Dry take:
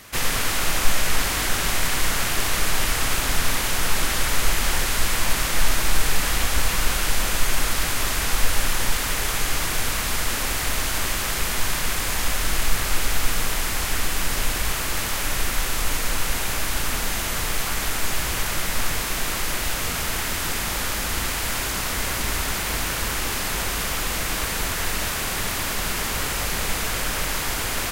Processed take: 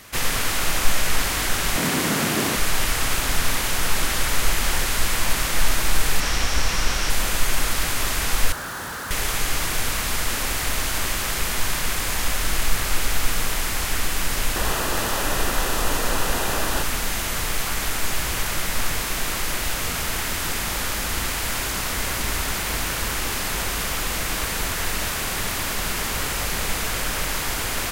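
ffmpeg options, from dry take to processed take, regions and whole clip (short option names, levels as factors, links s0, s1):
-filter_complex "[0:a]asettb=1/sr,asplit=3[s0][s1][s2];[s0]atrim=end=1.764[s3];[s1]atrim=start=1.76:end=2.56,asetpts=PTS-STARTPTS,afade=t=in:d=0.004:c=qsin,afade=t=out:st=0.796:d=0.004:c=qsin,highpass=130,equalizer=f=230:t=o:w=2.1:g=13.5[s4];[s2]atrim=start=2.556[s5];[s3][s4]acrossfade=d=0.004:c1=hsin:c2=qsin[s6];[s6][s5]acrossfade=d=0.004:c1=qsin:c2=hsin,asettb=1/sr,asplit=3[s7][s8][s9];[s7]atrim=end=6.204[s10];[s8]atrim=start=6.2:end=7.1,asetpts=PTS-STARTPTS,afade=t=in:d=0.004:c=qsin,afade=t=out:st=0.896:d=0.004:c=qsin,acrossover=split=7400[s11][s12];[s12]acompressor=threshold=0.0141:ratio=4:attack=1:release=60[s13];[s11][s13]amix=inputs=2:normalize=0,equalizer=f=5600:t=o:w=0.2:g=8[s14];[s9]atrim=start=7.096[s15];[s10][s14]acrossfade=d=0.004:c1=hsin:c2=qsin[s16];[s16][s15]acrossfade=d=0.004:c1=qsin:c2=hsin,asettb=1/sr,asplit=3[s17][s18][s19];[s17]atrim=end=8.524[s20];[s18]atrim=start=8.52:end=9.11,asetpts=PTS-STARTPTS,afade=t=in:d=0.004:c=qsin,afade=t=out:st=0.586:d=0.004:c=qsin,highpass=98,highshelf=f=1900:t=q:w=3:g=-6,asoftclip=type=hard:threshold=0.0335[s21];[s19]atrim=start=9.106[s22];[s20][s21]acrossfade=d=0.004:c1=hsin:c2=qsin[s23];[s23][s22]acrossfade=d=0.004:c1=qsin:c2=hsin,asettb=1/sr,asplit=3[s24][s25][s26];[s24]atrim=end=14.564[s27];[s25]atrim=start=14.56:end=16.83,asetpts=PTS-STARTPTS,afade=t=in:d=0.004:c=qsin,afade=t=out:st=2.266:d=0.004:c=qsin,equalizer=f=510:w=0.44:g=7.5,bandreject=f=2200:w=8.1[s28];[s26]atrim=start=16.826[s29];[s27][s28]acrossfade=d=0.004:c1=hsin:c2=qsin[s30];[s30][s29]acrossfade=d=0.004:c1=qsin:c2=hsin"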